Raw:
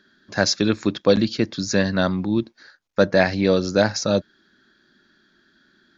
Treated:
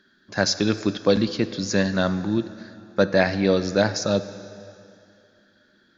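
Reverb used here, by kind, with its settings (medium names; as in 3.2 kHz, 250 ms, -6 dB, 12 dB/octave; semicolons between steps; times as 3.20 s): plate-style reverb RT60 2.6 s, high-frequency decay 0.9×, DRR 12 dB; trim -2 dB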